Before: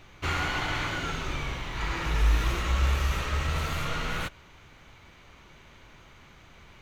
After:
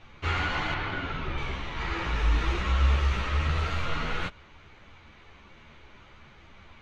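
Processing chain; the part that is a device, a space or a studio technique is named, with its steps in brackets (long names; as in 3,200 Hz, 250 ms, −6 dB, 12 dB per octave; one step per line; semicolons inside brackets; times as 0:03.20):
string-machine ensemble chorus (string-ensemble chorus; low-pass filter 4,400 Hz 12 dB per octave)
0:00.74–0:01.38: high-frequency loss of the air 170 metres
level +3.5 dB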